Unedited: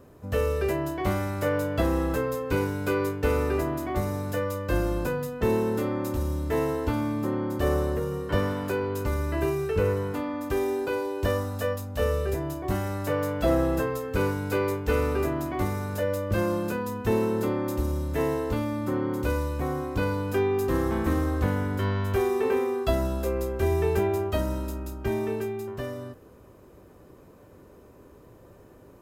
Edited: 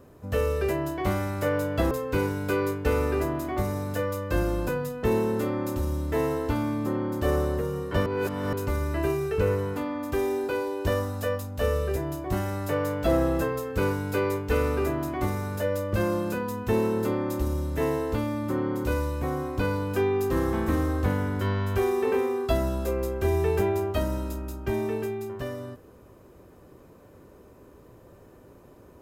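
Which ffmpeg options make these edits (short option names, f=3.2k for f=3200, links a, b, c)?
-filter_complex "[0:a]asplit=4[a][b][c][d];[a]atrim=end=1.912[e];[b]atrim=start=2.288:end=8.442[f];[c]atrim=start=8.438:end=8.912,asetpts=PTS-STARTPTS,areverse[g];[d]atrim=start=8.908[h];[e][f]acrossfade=d=0.004:c1=hsin:c2=hsin[i];[i][g]acrossfade=d=0.004:c1=hsin:c2=hsin[j];[j][h]acrossfade=d=0.004:c1=hsin:c2=hsin"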